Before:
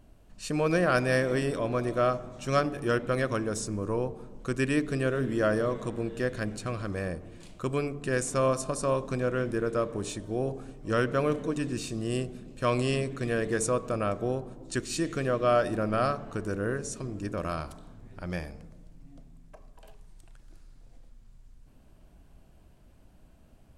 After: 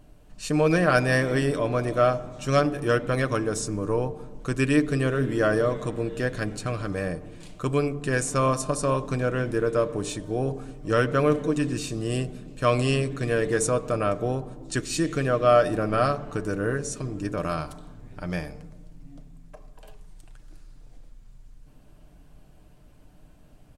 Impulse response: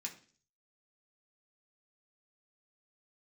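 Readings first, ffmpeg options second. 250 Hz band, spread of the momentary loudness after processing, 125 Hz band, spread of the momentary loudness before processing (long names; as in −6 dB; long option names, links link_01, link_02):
+4.0 dB, 11 LU, +5.5 dB, 10 LU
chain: -af "aecho=1:1:6.7:0.39,volume=3.5dB"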